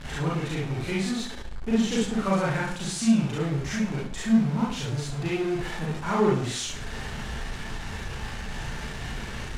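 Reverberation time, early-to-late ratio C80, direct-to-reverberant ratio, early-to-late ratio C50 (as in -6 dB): 0.50 s, 8.0 dB, -6.5 dB, 0.5 dB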